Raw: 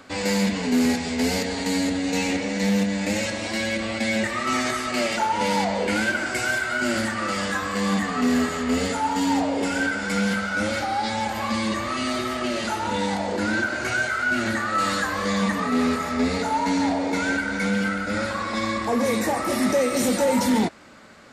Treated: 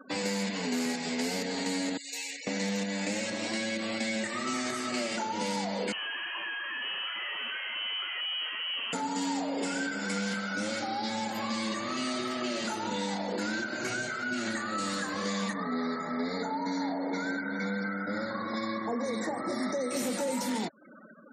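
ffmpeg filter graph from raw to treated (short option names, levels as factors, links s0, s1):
-filter_complex "[0:a]asettb=1/sr,asplit=3[s0][s1][s2];[s0]atrim=end=1.974[s3];[s1]atrim=start=1.97:end=2.47,asetpts=PTS-STARTPTS,afade=t=in:d=0.004:c=qsin,afade=t=out:st=0.496:d=0.004:c=qsin,aderivative,bandreject=f=6100:w=26[s4];[s2]atrim=start=2.466[s5];[s3][s4]acrossfade=d=0.004:c1=hsin:c2=qsin[s6];[s6][s5]acrossfade=d=0.004:c1=qsin:c2=hsin,asettb=1/sr,asplit=3[s7][s8][s9];[s7]atrim=end=5.924[s10];[s8]atrim=start=5.92:end=8.93,asetpts=PTS-STARTPTS,afade=t=in:d=0.004:c=qsin,afade=t=out:st=3.006:d=0.004:c=qsin,aeval=exprs='(tanh(22.4*val(0)+0.3)-tanh(0.3))/22.4':c=same,lowpass=f=2700:t=q:w=0.5098,lowpass=f=2700:t=q:w=0.6013,lowpass=f=2700:t=q:w=0.9,lowpass=f=2700:t=q:w=2.563,afreqshift=-3200[s11];[s9]atrim=start=8.926[s12];[s10][s11]acrossfade=d=0.004:c1=hsin:c2=qsin[s13];[s13][s12]acrossfade=d=0.004:c1=qsin:c2=hsin,asettb=1/sr,asplit=3[s14][s15][s16];[s14]atrim=end=15.534[s17];[s15]atrim=start=15.53:end=19.91,asetpts=PTS-STARTPTS,afade=t=in:d=0.004:c=qsin,afade=t=out:st=4.376:d=0.004:c=qsin,asuperstop=centerf=2800:order=8:qfactor=2.2,aemphasis=mode=reproduction:type=50kf[s18];[s16]atrim=start=19.906[s19];[s17][s18]acrossfade=d=0.004:c1=hsin:c2=qsin[s20];[s20][s19]acrossfade=d=0.004:c1=qsin:c2=hsin,highpass=f=140:w=0.5412,highpass=f=140:w=1.3066,afftfilt=real='re*gte(hypot(re,im),0.0112)':imag='im*gte(hypot(re,im),0.0112)':win_size=1024:overlap=0.75,acrossover=split=420|3900[s21][s22][s23];[s21]acompressor=threshold=0.0178:ratio=4[s24];[s22]acompressor=threshold=0.0158:ratio=4[s25];[s23]acompressor=threshold=0.0112:ratio=4[s26];[s24][s25][s26]amix=inputs=3:normalize=0"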